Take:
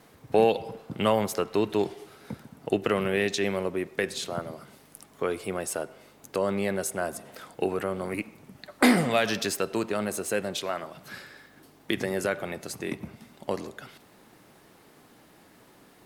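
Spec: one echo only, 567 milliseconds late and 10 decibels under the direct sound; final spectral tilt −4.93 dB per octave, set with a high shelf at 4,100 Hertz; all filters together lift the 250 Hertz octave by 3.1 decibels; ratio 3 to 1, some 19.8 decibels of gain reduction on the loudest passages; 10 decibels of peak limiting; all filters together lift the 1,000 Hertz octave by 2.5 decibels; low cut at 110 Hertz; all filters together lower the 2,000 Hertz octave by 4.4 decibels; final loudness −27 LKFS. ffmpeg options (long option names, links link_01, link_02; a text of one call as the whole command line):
ffmpeg -i in.wav -af "highpass=110,equalizer=frequency=250:width_type=o:gain=4,equalizer=frequency=1000:width_type=o:gain=5,equalizer=frequency=2000:width_type=o:gain=-6,highshelf=frequency=4100:gain=-6.5,acompressor=threshold=-41dB:ratio=3,alimiter=level_in=6.5dB:limit=-24dB:level=0:latency=1,volume=-6.5dB,aecho=1:1:567:0.316,volume=16.5dB" out.wav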